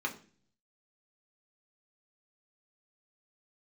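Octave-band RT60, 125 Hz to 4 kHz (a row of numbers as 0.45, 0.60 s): 0.90, 0.70, 0.50, 0.35, 0.40, 0.45 s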